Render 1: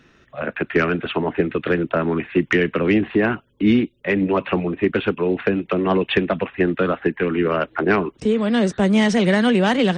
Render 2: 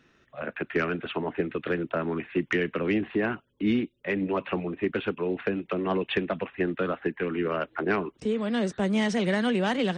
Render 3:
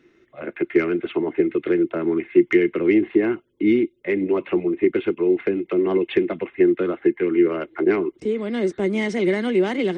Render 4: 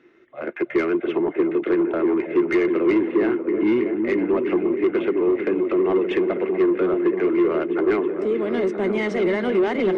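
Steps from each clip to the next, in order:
low shelf 120 Hz -4.5 dB; gain -8 dB
small resonant body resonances 350/2100 Hz, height 17 dB, ringing for 45 ms; gain -2 dB
repeats that get brighter 0.321 s, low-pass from 400 Hz, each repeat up 1 oct, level -6 dB; overdrive pedal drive 19 dB, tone 1100 Hz, clips at -4 dBFS; gain -5 dB

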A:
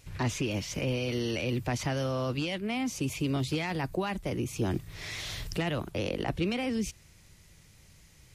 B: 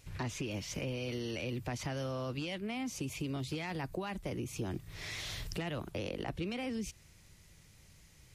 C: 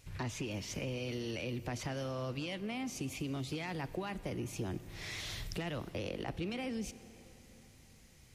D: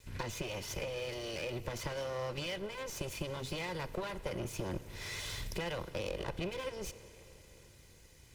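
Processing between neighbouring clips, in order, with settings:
compressor 2.5:1, threshold -33 dBFS, peak gain reduction 6.5 dB; gain -3 dB
plate-style reverb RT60 4.6 s, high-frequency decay 0.8×, DRR 14.5 dB; gain -1 dB
minimum comb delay 2 ms; gain +2.5 dB

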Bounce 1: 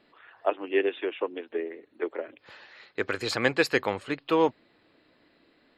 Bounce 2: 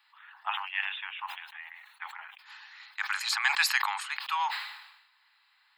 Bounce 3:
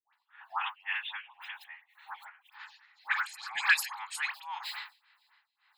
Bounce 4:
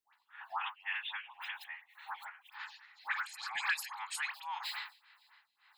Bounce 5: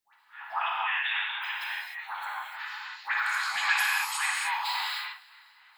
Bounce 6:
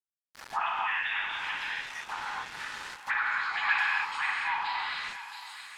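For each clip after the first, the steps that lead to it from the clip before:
steep high-pass 810 Hz 96 dB/oct; high shelf 7900 Hz +8.5 dB; sustainer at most 61 dB/s
dispersion highs, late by 0.136 s, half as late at 900 Hz; tremolo 1.9 Hz, depth 85%; photocell phaser 3.6 Hz; gain +4.5 dB
compressor 2:1, threshold -43 dBFS, peak gain reduction 13 dB; gain +3 dB
non-linear reverb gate 0.33 s flat, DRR -5 dB; gain +4.5 dB
sample gate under -38.5 dBFS; thinning echo 0.674 s, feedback 48%, high-pass 210 Hz, level -14 dB; treble ducked by the level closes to 2700 Hz, closed at -27 dBFS

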